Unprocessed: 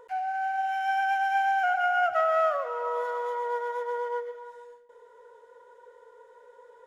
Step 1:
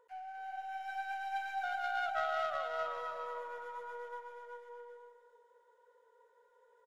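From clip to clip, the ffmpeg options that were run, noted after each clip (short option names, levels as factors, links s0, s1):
-af "aeval=exprs='0.188*(cos(1*acos(clip(val(0)/0.188,-1,1)))-cos(1*PI/2))+0.0299*(cos(3*acos(clip(val(0)/0.188,-1,1)))-cos(3*PI/2))+0.00531*(cos(6*acos(clip(val(0)/0.188,-1,1)))-cos(6*PI/2))':c=same,lowshelf=f=300:g=-8,aecho=1:1:370|610.5|766.8|868.4|934.5:0.631|0.398|0.251|0.158|0.1,volume=0.355"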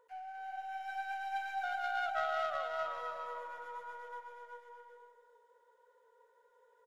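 -af "bandreject=f=60:t=h:w=6,bandreject=f=120:t=h:w=6,bandreject=f=180:t=h:w=6,bandreject=f=240:t=h:w=6,bandreject=f=300:t=h:w=6,bandreject=f=360:t=h:w=6,bandreject=f=420:t=h:w=6,bandreject=f=480:t=h:w=6"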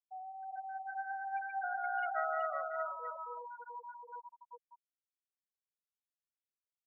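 -af "afftfilt=real='re*gte(hypot(re,im),0.0282)':imag='im*gte(hypot(re,im),0.0282)':win_size=1024:overlap=0.75,highpass=200"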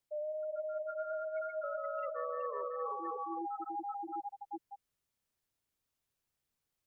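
-af "lowshelf=f=460:g=9.5,areverse,acompressor=threshold=0.00562:ratio=6,areverse,afreqshift=-150,volume=2.66"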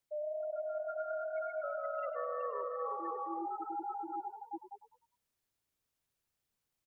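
-filter_complex "[0:a]asplit=5[s0][s1][s2][s3][s4];[s1]adelay=101,afreqshift=41,volume=0.251[s5];[s2]adelay=202,afreqshift=82,volume=0.106[s6];[s3]adelay=303,afreqshift=123,volume=0.0442[s7];[s4]adelay=404,afreqshift=164,volume=0.0186[s8];[s0][s5][s6][s7][s8]amix=inputs=5:normalize=0"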